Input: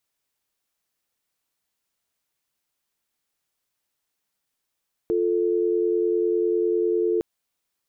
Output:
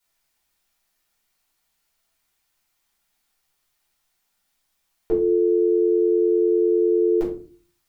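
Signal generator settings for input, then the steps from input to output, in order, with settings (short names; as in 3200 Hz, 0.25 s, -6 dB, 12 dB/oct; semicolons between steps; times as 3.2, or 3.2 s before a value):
call progress tone dial tone, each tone -22 dBFS 2.11 s
ten-band EQ 125 Hz -6 dB, 250 Hz -3 dB, 500 Hz -5 dB; shoebox room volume 220 m³, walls furnished, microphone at 4.6 m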